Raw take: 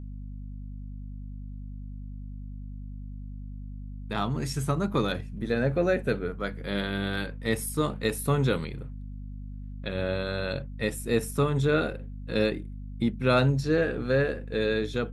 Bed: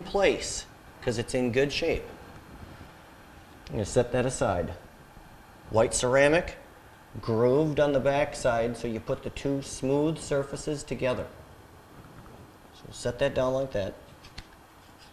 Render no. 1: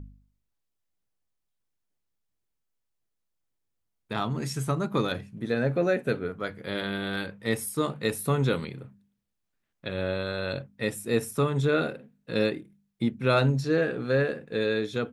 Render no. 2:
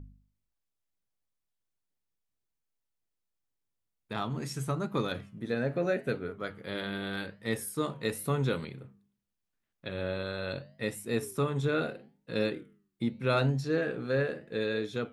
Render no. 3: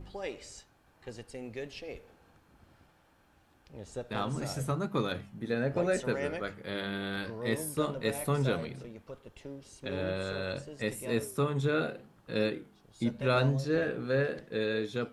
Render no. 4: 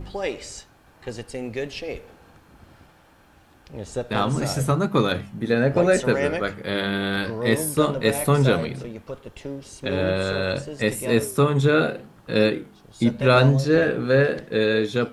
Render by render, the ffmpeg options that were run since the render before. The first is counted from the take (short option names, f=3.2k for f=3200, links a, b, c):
-af "bandreject=f=50:t=h:w=4,bandreject=f=100:t=h:w=4,bandreject=f=150:t=h:w=4,bandreject=f=200:t=h:w=4,bandreject=f=250:t=h:w=4"
-af "flanger=delay=7.1:depth=5.3:regen=-87:speed=0.81:shape=triangular"
-filter_complex "[1:a]volume=-15.5dB[a];[0:a][a]amix=inputs=2:normalize=0"
-af "volume=11dB"